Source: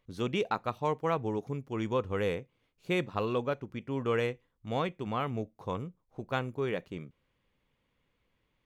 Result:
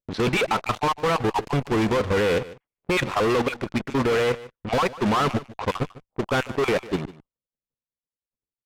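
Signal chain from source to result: random spectral dropouts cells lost 28%; low shelf 440 Hz -8 dB; in parallel at -5 dB: fuzz box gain 57 dB, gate -54 dBFS; on the sum: level quantiser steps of 10 dB; LPF 3400 Hz 6 dB/oct; low-pass opened by the level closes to 560 Hz, open at -24.5 dBFS; gate -56 dBFS, range -10 dB; on a send: echo 0.149 s -18 dB

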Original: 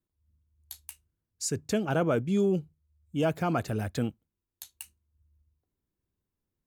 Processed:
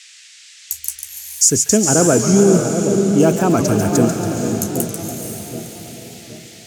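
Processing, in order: resonant high shelf 4800 Hz +9 dB, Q 3; split-band echo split 780 Hz, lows 0.77 s, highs 0.14 s, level -7.5 dB; expander -43 dBFS; band noise 1800–7900 Hz -53 dBFS; diffused feedback echo 0.49 s, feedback 45%, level -5.5 dB; in parallel at -10 dB: soft clip -15 dBFS, distortion -17 dB; on the sum: dynamic EQ 290 Hz, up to +6 dB, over -36 dBFS, Q 1; maximiser +8 dB; record warp 45 rpm, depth 100 cents; gain -1 dB

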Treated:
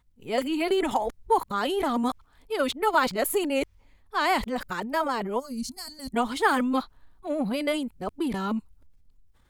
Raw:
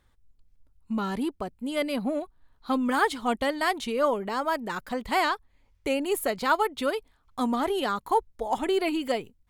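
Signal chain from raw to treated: whole clip reversed; transient shaper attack +2 dB, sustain +6 dB; spectral gain 5.39–6.11, 270–4100 Hz -23 dB

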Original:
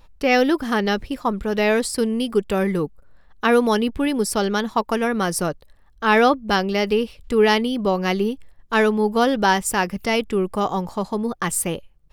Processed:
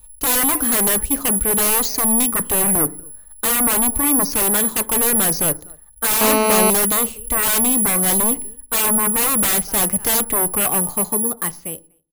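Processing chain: ending faded out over 1.62 s; 2.38–4.3 dynamic EQ 3200 Hz, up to -5 dB, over -37 dBFS, Q 0.88; outdoor echo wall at 42 m, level -29 dB; careless resampling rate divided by 4×, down filtered, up zero stuff; sine folder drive 18 dB, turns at 7.5 dBFS; FDN reverb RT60 0.52 s, low-frequency decay 1.4×, high-frequency decay 0.25×, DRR 15.5 dB; 6.21–6.7 GSM buzz -3 dBFS; three-band expander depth 40%; gain -16 dB

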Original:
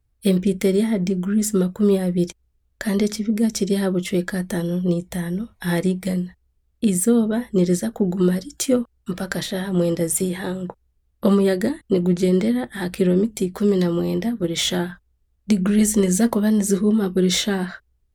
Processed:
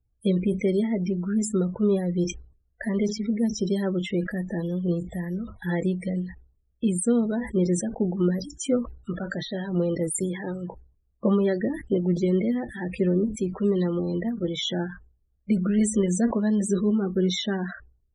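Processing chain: loudest bins only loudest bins 32; wow and flutter 19 cents; sustainer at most 120 dB/s; gain -5 dB

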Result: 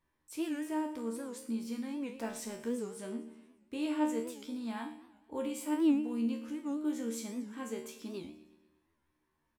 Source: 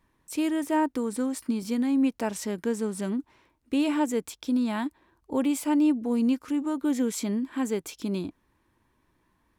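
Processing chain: 2.15–2.74 G.711 law mismatch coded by mu; low shelf 320 Hz -3 dB; resonator 76 Hz, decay 0.46 s, harmonics all, mix 90%; feedback echo 0.118 s, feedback 55%, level -16 dB; record warp 78 rpm, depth 160 cents

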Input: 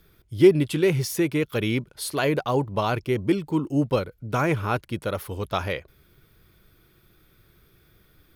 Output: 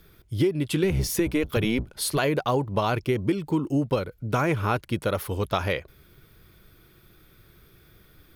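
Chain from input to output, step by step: 0.83–2.18 octaver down 1 oct, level -1 dB; compressor 10:1, threshold -23 dBFS, peak gain reduction 14 dB; gain +3.5 dB

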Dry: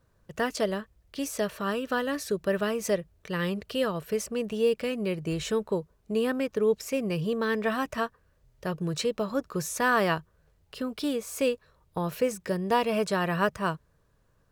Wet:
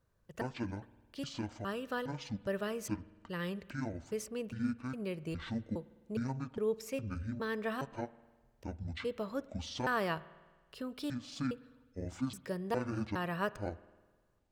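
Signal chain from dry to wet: trilling pitch shifter -11.5 st, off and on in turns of 0.411 s; spring tank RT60 1.4 s, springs 51 ms, chirp 25 ms, DRR 18.5 dB; gain -9 dB

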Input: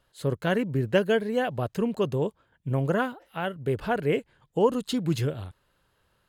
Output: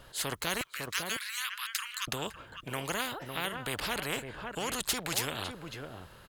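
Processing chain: 0.61–2.08 steep high-pass 1200 Hz 72 dB/oct; outdoor echo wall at 95 m, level -17 dB; spectral compressor 4:1

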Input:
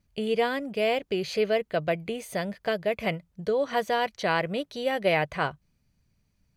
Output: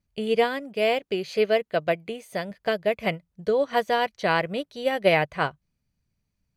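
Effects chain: 0.44–2.51 low shelf 90 Hz -11.5 dB; upward expander 1.5:1, over -43 dBFS; gain +5 dB

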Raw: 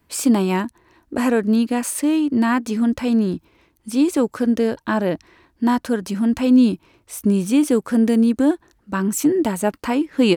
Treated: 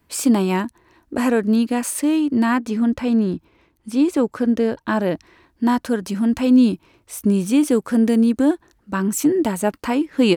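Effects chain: 2.57–4.88 high shelf 4600 Hz -7.5 dB

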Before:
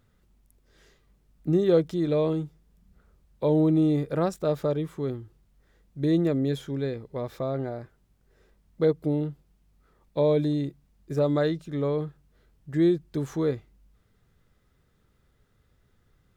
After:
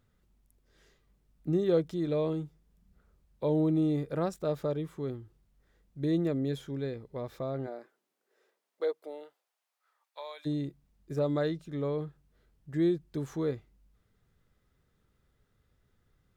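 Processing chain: 7.66–10.45 HPF 250 Hz -> 990 Hz 24 dB/oct; gain -5.5 dB

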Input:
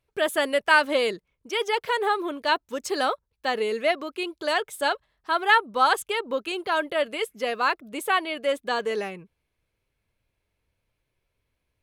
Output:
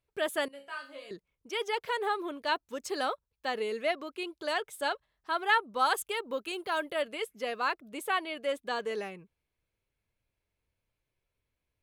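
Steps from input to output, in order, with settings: 0.48–1.11 resonator bank C#3 major, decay 0.35 s; 5.79–7.03 high shelf 9300 Hz +9.5 dB; gain -7 dB

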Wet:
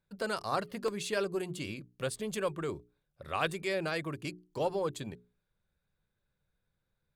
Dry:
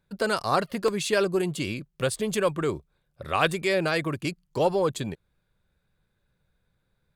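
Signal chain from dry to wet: notches 60/120/180/240/300/360/420 Hz; gain -8.5 dB

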